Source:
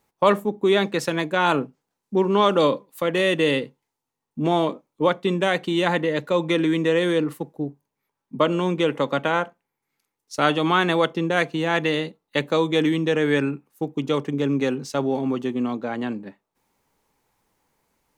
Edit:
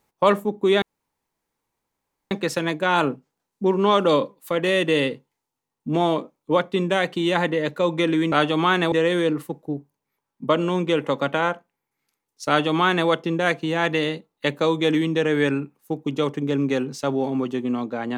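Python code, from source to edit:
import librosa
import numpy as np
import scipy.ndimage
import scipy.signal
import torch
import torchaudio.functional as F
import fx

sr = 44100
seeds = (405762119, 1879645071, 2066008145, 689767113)

y = fx.edit(x, sr, fx.insert_room_tone(at_s=0.82, length_s=1.49),
    fx.duplicate(start_s=10.39, length_s=0.6, to_s=6.83), tone=tone)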